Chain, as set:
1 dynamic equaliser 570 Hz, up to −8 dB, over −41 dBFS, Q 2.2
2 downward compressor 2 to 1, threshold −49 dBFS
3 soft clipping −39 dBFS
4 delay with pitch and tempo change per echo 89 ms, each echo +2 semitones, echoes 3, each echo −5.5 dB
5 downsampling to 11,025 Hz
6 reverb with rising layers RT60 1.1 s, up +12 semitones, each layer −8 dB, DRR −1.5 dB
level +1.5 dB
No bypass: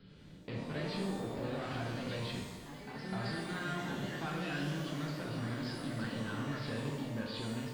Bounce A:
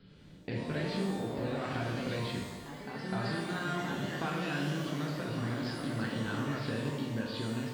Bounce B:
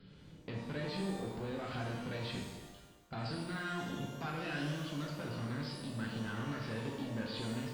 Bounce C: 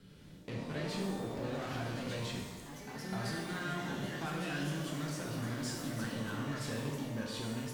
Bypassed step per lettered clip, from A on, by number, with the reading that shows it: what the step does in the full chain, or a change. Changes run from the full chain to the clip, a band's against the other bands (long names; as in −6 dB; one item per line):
3, distortion level −12 dB
4, change in integrated loudness −1.0 LU
5, 8 kHz band +6.5 dB